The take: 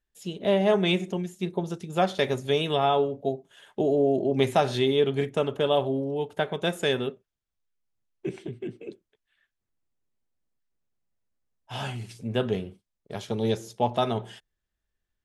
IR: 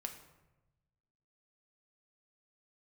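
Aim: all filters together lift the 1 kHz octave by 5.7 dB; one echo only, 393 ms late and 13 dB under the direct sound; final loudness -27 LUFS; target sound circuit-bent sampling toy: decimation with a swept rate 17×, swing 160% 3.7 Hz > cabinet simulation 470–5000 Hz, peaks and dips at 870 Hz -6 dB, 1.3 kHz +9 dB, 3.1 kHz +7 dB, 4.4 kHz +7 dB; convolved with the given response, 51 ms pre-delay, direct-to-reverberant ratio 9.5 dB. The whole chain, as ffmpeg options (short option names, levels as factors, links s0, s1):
-filter_complex "[0:a]equalizer=f=1000:t=o:g=9,aecho=1:1:393:0.224,asplit=2[s0][s1];[1:a]atrim=start_sample=2205,adelay=51[s2];[s1][s2]afir=irnorm=-1:irlink=0,volume=0.422[s3];[s0][s3]amix=inputs=2:normalize=0,acrusher=samples=17:mix=1:aa=0.000001:lfo=1:lforange=27.2:lforate=3.7,highpass=470,equalizer=f=870:t=q:w=4:g=-6,equalizer=f=1300:t=q:w=4:g=9,equalizer=f=3100:t=q:w=4:g=7,equalizer=f=4400:t=q:w=4:g=7,lowpass=f=5000:w=0.5412,lowpass=f=5000:w=1.3066,volume=0.708"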